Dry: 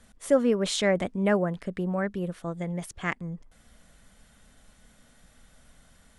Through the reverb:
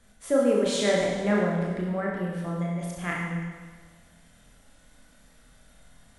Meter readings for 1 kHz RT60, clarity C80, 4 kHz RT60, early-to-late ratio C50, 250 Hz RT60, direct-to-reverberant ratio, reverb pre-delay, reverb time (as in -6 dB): 1.5 s, 2.5 dB, 1.5 s, 0.0 dB, 1.5 s, -3.5 dB, 24 ms, 1.5 s